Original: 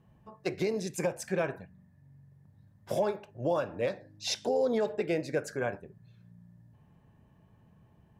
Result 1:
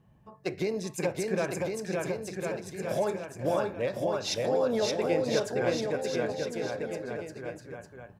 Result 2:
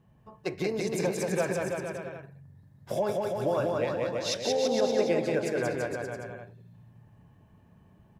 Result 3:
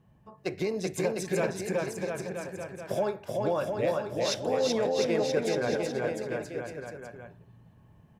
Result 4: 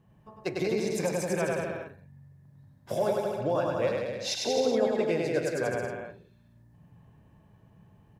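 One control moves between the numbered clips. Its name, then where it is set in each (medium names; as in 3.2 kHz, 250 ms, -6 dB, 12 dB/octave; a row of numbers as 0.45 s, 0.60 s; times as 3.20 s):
bouncing-ball echo, first gap: 570 ms, 180 ms, 380 ms, 100 ms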